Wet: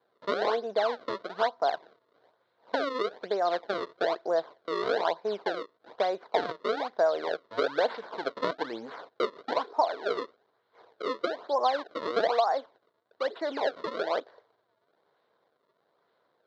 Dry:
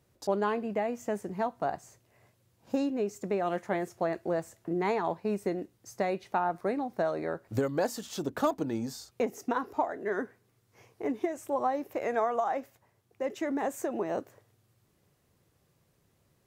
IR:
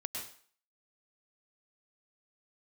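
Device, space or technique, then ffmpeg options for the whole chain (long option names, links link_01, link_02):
circuit-bent sampling toy: -af "acrusher=samples=32:mix=1:aa=0.000001:lfo=1:lforange=51.2:lforate=1.1,highpass=450,equalizer=frequency=460:width_type=q:width=4:gain=7,equalizer=frequency=660:width_type=q:width=4:gain=6,equalizer=frequency=1000:width_type=q:width=4:gain=6,equalizer=frequency=1500:width_type=q:width=4:gain=5,equalizer=frequency=2600:width_type=q:width=4:gain=-10,equalizer=frequency=4000:width_type=q:width=4:gain=7,lowpass=frequency=4200:width=0.5412,lowpass=frequency=4200:width=1.3066"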